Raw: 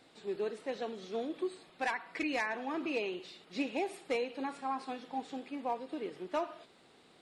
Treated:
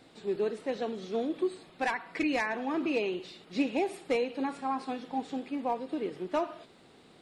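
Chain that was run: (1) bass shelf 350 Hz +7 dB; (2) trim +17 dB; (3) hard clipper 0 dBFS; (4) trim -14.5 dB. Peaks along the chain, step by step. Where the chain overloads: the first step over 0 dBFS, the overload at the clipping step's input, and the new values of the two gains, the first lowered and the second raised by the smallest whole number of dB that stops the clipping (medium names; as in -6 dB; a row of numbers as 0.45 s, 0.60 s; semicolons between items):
-20.5 dBFS, -3.5 dBFS, -3.5 dBFS, -18.0 dBFS; nothing clips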